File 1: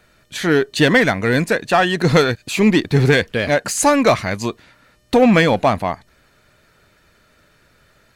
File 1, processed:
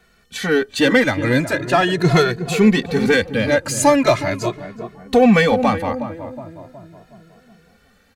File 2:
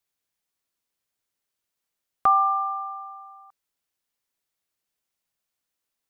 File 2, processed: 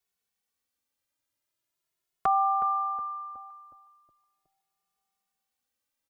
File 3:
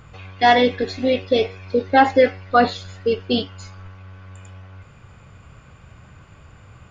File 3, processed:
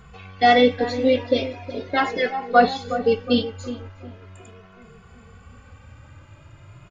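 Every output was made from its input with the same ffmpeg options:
-filter_complex "[0:a]asplit=2[s0][s1];[s1]adelay=367,lowpass=f=980:p=1,volume=0.335,asplit=2[s2][s3];[s3]adelay=367,lowpass=f=980:p=1,volume=0.54,asplit=2[s4][s5];[s5]adelay=367,lowpass=f=980:p=1,volume=0.54,asplit=2[s6][s7];[s7]adelay=367,lowpass=f=980:p=1,volume=0.54,asplit=2[s8][s9];[s9]adelay=367,lowpass=f=980:p=1,volume=0.54,asplit=2[s10][s11];[s11]adelay=367,lowpass=f=980:p=1,volume=0.54[s12];[s0][s2][s4][s6][s8][s10][s12]amix=inputs=7:normalize=0,asplit=2[s13][s14];[s14]adelay=2.3,afreqshift=0.4[s15];[s13][s15]amix=inputs=2:normalize=1,volume=1.19"

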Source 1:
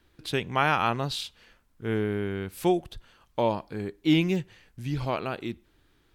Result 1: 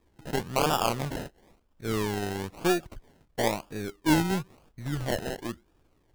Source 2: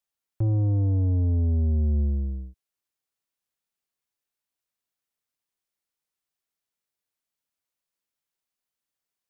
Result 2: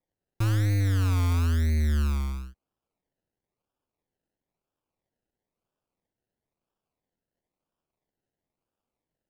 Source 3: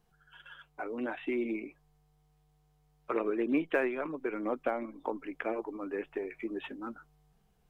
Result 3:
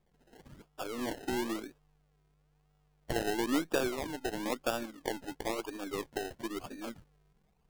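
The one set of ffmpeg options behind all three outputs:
-af "aeval=exprs='if(lt(val(0),0),0.708*val(0),val(0))':c=same,acrusher=samples=30:mix=1:aa=0.000001:lfo=1:lforange=18:lforate=1"

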